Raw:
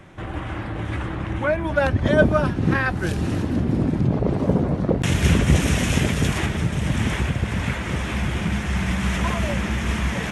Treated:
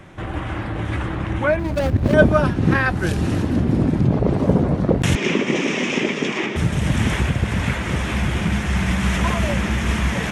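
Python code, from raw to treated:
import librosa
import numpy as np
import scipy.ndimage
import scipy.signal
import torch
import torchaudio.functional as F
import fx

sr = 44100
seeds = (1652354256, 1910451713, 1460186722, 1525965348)

y = fx.median_filter(x, sr, points=41, at=(1.59, 2.14))
y = fx.cabinet(y, sr, low_hz=220.0, low_slope=24, high_hz=5700.0, hz=(380.0, 710.0, 1500.0, 2300.0, 4200.0), db=(5, -5, -7, 4, -8), at=(5.15, 6.56))
y = y * librosa.db_to_amplitude(3.0)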